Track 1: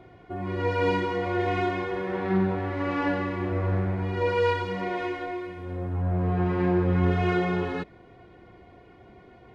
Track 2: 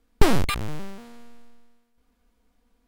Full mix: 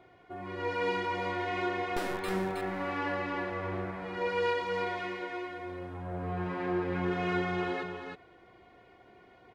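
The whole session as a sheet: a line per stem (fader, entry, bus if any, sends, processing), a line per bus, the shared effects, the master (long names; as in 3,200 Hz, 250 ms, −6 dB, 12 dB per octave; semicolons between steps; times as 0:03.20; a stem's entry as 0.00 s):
−3.5 dB, 0.00 s, no send, echo send −4 dB, no processing
−15.0 dB, 1.75 s, no send, echo send −5 dB, no processing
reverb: not used
echo: single-tap delay 318 ms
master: low-shelf EQ 330 Hz −11.5 dB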